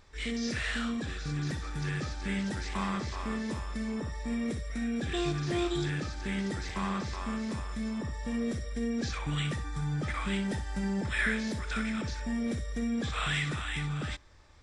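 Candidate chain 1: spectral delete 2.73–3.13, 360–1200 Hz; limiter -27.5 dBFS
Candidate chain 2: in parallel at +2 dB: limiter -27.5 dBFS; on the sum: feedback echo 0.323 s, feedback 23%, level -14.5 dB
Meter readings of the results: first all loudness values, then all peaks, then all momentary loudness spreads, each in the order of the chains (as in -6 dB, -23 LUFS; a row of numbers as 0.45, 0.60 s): -36.0, -27.5 LUFS; -27.5, -15.0 dBFS; 2, 4 LU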